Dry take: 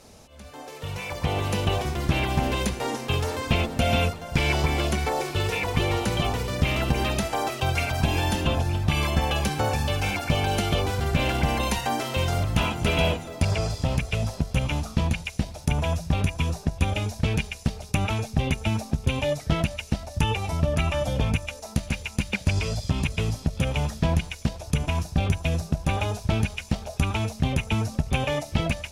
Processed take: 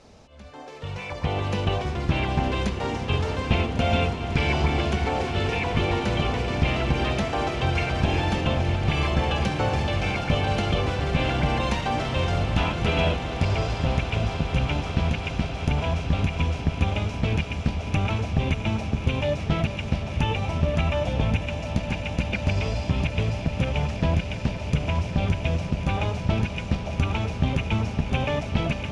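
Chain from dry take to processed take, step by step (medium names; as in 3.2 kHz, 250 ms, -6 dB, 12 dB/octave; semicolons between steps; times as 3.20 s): distance through air 110 m; echo with a slow build-up 183 ms, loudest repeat 8, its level -16 dB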